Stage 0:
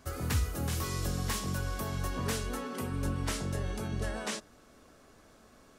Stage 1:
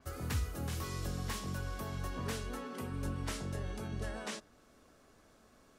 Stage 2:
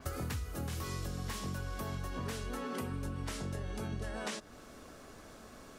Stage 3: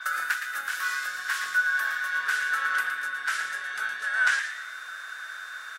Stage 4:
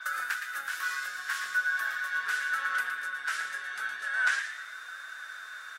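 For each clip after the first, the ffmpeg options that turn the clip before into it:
ffmpeg -i in.wav -af "adynamicequalizer=threshold=0.00251:dfrequency=5300:dqfactor=0.7:tfrequency=5300:tqfactor=0.7:attack=5:release=100:ratio=0.375:range=2:mode=cutabove:tftype=highshelf,volume=-5dB" out.wav
ffmpeg -i in.wav -af "acompressor=threshold=-46dB:ratio=12,volume=11dB" out.wav
ffmpeg -i in.wav -filter_complex "[0:a]highpass=frequency=1500:width_type=q:width=12,aeval=exprs='val(0)+0.00141*sin(2*PI*3600*n/s)':channel_layout=same,asplit=5[link_01][link_02][link_03][link_04][link_05];[link_02]adelay=115,afreqshift=140,volume=-8dB[link_06];[link_03]adelay=230,afreqshift=280,volume=-16.6dB[link_07];[link_04]adelay=345,afreqshift=420,volume=-25.3dB[link_08];[link_05]adelay=460,afreqshift=560,volume=-33.9dB[link_09];[link_01][link_06][link_07][link_08][link_09]amix=inputs=5:normalize=0,volume=7dB" out.wav
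ffmpeg -i in.wav -af "flanger=delay=3.1:depth=5.4:regen=-48:speed=0.39:shape=triangular" out.wav

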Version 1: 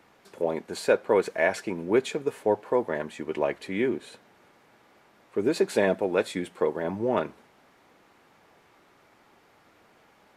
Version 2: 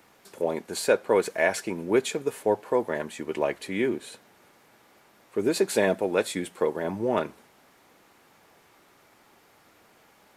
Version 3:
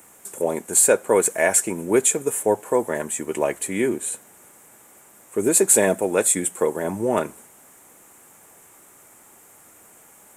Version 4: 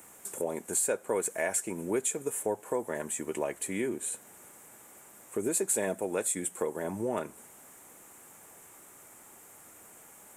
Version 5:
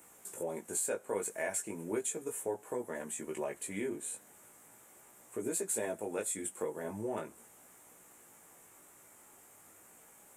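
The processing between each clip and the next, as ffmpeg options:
ffmpeg -i in.wav -af "highshelf=frequency=6200:gain=11.5" out.wav
ffmpeg -i in.wav -af "highshelf=frequency=6100:width_type=q:width=3:gain=10.5,volume=4dB" out.wav
ffmpeg -i in.wav -af "acompressor=threshold=-31dB:ratio=2,volume=-3dB" out.wav
ffmpeg -i in.wav -af "flanger=delay=16.5:depth=3.5:speed=0.38,volume=-2.5dB" out.wav

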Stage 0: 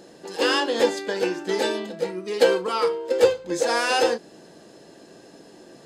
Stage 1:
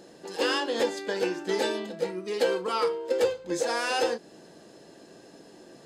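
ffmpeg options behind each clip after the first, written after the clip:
ffmpeg -i in.wav -af "alimiter=limit=-12.5dB:level=0:latency=1:release=268,volume=-3dB" out.wav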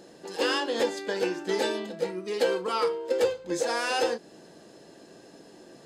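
ffmpeg -i in.wav -af anull out.wav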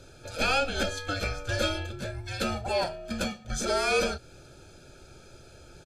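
ffmpeg -i in.wav -af "aecho=1:1:1.1:0.93,afreqshift=-300" out.wav

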